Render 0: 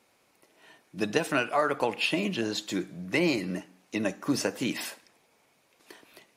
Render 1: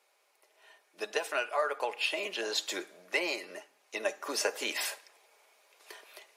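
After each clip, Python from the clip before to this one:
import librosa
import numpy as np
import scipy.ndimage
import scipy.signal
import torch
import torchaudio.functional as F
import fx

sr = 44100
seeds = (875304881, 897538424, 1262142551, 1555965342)

y = scipy.signal.sosfilt(scipy.signal.butter(4, 450.0, 'highpass', fs=sr, output='sos'), x)
y = y + 0.33 * np.pad(y, (int(4.9 * sr / 1000.0), 0))[:len(y)]
y = fx.rider(y, sr, range_db=4, speed_s=0.5)
y = F.gain(torch.from_numpy(y), -1.5).numpy()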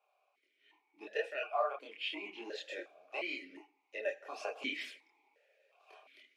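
y = fx.chorus_voices(x, sr, voices=4, hz=0.78, base_ms=26, depth_ms=3.8, mix_pct=50)
y = fx.vowel_held(y, sr, hz=2.8)
y = F.gain(torch.from_numpy(y), 8.0).numpy()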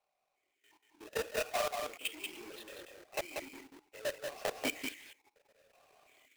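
y = fx.halfwave_hold(x, sr)
y = fx.level_steps(y, sr, step_db=17)
y = y + 10.0 ** (-4.5 / 20.0) * np.pad(y, (int(187 * sr / 1000.0), 0))[:len(y)]
y = F.gain(torch.from_numpy(y), 1.0).numpy()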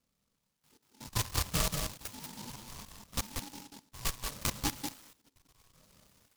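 y = x * np.sin(2.0 * np.pi * 560.0 * np.arange(len(x)) / sr)
y = scipy.signal.sosfilt(scipy.signal.butter(2, 1500.0, 'lowpass', fs=sr, output='sos'), y)
y = fx.noise_mod_delay(y, sr, seeds[0], noise_hz=4800.0, depth_ms=0.21)
y = F.gain(torch.from_numpy(y), 8.0).numpy()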